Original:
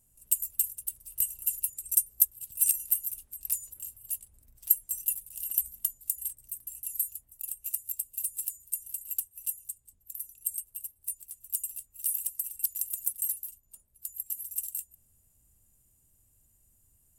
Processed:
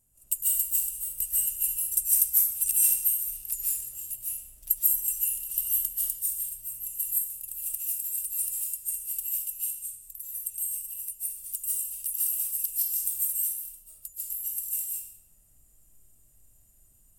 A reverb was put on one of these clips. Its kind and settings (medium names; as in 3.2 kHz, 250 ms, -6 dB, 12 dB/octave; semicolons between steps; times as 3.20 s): algorithmic reverb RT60 0.76 s, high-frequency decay 0.95×, pre-delay 110 ms, DRR -7 dB; trim -2.5 dB